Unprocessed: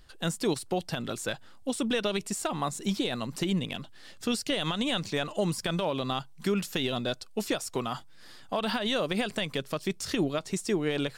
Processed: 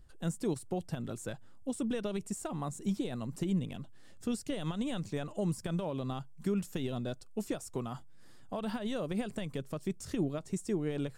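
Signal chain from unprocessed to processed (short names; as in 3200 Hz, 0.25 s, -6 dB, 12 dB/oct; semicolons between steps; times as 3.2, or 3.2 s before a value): EQ curve 110 Hz 0 dB, 4400 Hz -17 dB, 7800 Hz -7 dB, 12000 Hz -10 dB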